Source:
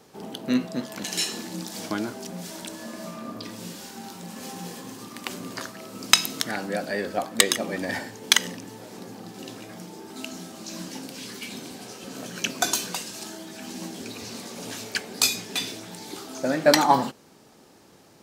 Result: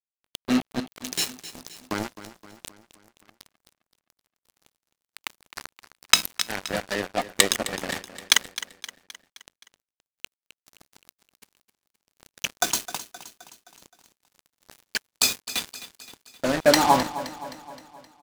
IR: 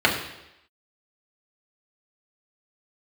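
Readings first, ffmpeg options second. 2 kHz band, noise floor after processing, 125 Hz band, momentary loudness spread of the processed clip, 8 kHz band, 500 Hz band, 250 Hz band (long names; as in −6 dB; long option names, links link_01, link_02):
0.0 dB, below −85 dBFS, −2.5 dB, 22 LU, 0.0 dB, −0.5 dB, −1.5 dB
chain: -af "acrusher=bits=3:mix=0:aa=0.5,aecho=1:1:261|522|783|1044|1305:0.188|0.102|0.0549|0.0297|0.016"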